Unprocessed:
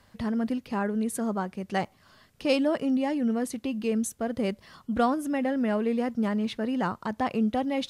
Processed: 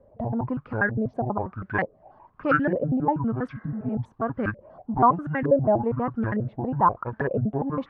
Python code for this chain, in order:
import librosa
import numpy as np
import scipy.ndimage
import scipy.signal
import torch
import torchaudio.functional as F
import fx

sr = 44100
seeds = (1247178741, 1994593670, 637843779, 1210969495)

y = fx.pitch_trill(x, sr, semitones=-10.5, every_ms=81)
y = fx.filter_lfo_lowpass(y, sr, shape='saw_up', hz=1.1, low_hz=510.0, high_hz=1800.0, q=7.4)
y = fx.spec_repair(y, sr, seeds[0], start_s=3.55, length_s=0.37, low_hz=330.0, high_hz=2100.0, source='both')